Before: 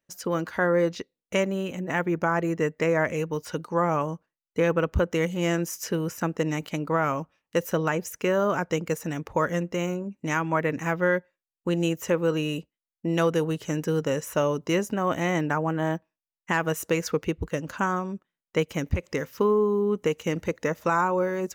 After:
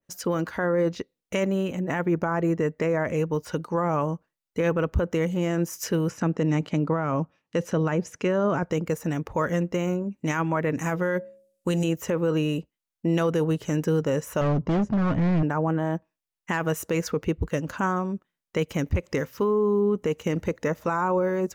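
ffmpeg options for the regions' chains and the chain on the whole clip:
ffmpeg -i in.wav -filter_complex "[0:a]asettb=1/sr,asplit=3[link_01][link_02][link_03];[link_01]atrim=end=6.104[link_04];[link_02]atrim=start=6.1:end=8.63,asetpts=PTS-STARTPTS,afade=type=in:duration=0.004:curve=qsin,afade=type=out:start_time=2.526:duration=0.004:curve=qsin,highpass=120,lowpass=6700,lowshelf=frequency=290:gain=7[link_05];[link_03]atrim=start=8.626[link_06];[link_04][link_05]acrossfade=duration=0.004:curve1=hsin:curve2=qsin[link_07];[link_07][link_06]acrossfade=duration=0.004:curve1=qsin:curve2=hsin,asettb=1/sr,asplit=3[link_08][link_09][link_10];[link_08]atrim=end=10.754[link_11];[link_09]atrim=start=10.75:end=11.84,asetpts=PTS-STARTPTS,afade=type=in:duration=0.004:curve=qsin,afade=type=out:start_time=1.086:duration=0.004:curve=qsin,equalizer=frequency=9900:width=0.55:gain=12.5,bandreject=frequency=68.42:width_type=h:width=4,bandreject=frequency=136.84:width_type=h:width=4,bandreject=frequency=205.26:width_type=h:width=4,bandreject=frequency=273.68:width_type=h:width=4,bandreject=frequency=342.1:width_type=h:width=4,bandreject=frequency=410.52:width_type=h:width=4,bandreject=frequency=478.94:width_type=h:width=4,bandreject=frequency=547.36:width_type=h:width=4,bandreject=frequency=615.78:width_type=h:width=4[link_12];[link_10]atrim=start=11.836[link_13];[link_11][link_12]acrossfade=duration=0.004:curve1=hsin:curve2=qsin[link_14];[link_14][link_13]acrossfade=duration=0.004:curve1=qsin:curve2=hsin,asettb=1/sr,asplit=3[link_15][link_16][link_17];[link_15]atrim=end=14.414[link_18];[link_16]atrim=start=14.41:end=15.43,asetpts=PTS-STARTPTS,afade=type=in:duration=0.004:curve=qsin,afade=type=out:start_time=1.016:duration=0.004:curve=qsin,bass=frequency=250:gain=13,treble=frequency=4000:gain=-14,asoftclip=type=hard:threshold=-24dB,lowpass=frequency=7300:width=0.5412,lowpass=frequency=7300:width=1.3066[link_19];[link_17]atrim=start=15.426[link_20];[link_18][link_19]acrossfade=duration=0.004:curve1=hsin:curve2=qsin[link_21];[link_21][link_20]acrossfade=duration=0.004:curve1=qsin:curve2=hsin,lowshelf=frequency=140:gain=4,alimiter=limit=-18dB:level=0:latency=1:release=19,adynamicequalizer=threshold=0.00708:dfrequency=1600:dqfactor=0.7:tfrequency=1600:tqfactor=0.7:attack=5:release=100:ratio=0.375:range=3.5:mode=cutabove:tftype=highshelf,volume=2.5dB" out.wav

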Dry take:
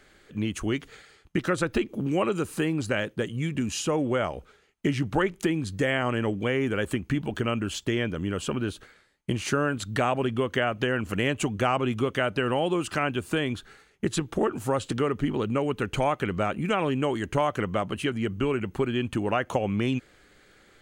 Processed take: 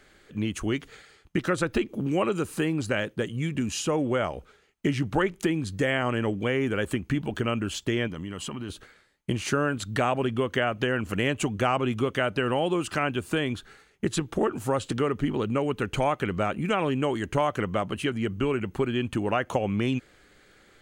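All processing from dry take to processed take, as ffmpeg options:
ffmpeg -i in.wav -filter_complex "[0:a]asettb=1/sr,asplit=3[link_01][link_02][link_03];[link_01]atrim=end=8.074[link_04];[link_02]atrim=start=8.07:end=8.7,asetpts=PTS-STARTPTS,afade=type=in:duration=0.004:curve=qsin,afade=type=out:start_time=0.626:duration=0.004:curve=qsin,lowshelf=frequency=92:gain=-10.5,aecho=1:1:1:0.42,atrim=end_sample=27783,acompressor=threshold=-31dB:ratio=4:attack=3.2:release=140:knee=1:detection=peak[link_05];[link_03]atrim=start=8.696[link_06];[link_04][link_05]acrossfade=duration=0.004:curve1=hsin:curve2=qsin[link_07];[link_07][link_06]acrossfade=duration=0.004:curve1=qsin:curve2=hsin" out.wav

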